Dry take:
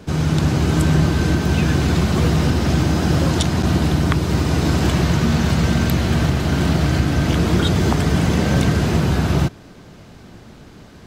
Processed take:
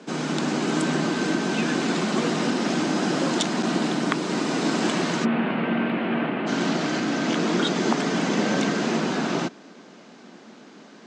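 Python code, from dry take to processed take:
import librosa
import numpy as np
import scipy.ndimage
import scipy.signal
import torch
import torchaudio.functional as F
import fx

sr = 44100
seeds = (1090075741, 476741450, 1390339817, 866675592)

y = fx.ellip_bandpass(x, sr, low_hz=220.0, high_hz=fx.steps((0.0, 8000.0), (5.24, 2700.0), (6.46, 7000.0)), order=3, stop_db=40)
y = F.gain(torch.from_numpy(y), -1.5).numpy()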